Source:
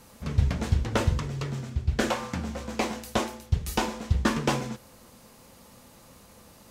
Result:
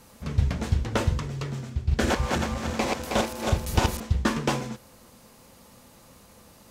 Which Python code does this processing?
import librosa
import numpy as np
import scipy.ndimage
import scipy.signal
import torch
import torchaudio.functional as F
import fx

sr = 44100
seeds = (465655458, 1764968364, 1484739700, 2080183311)

y = fx.reverse_delay_fb(x, sr, ms=159, feedback_pct=64, wet_db=-1.0, at=(1.75, 4.0))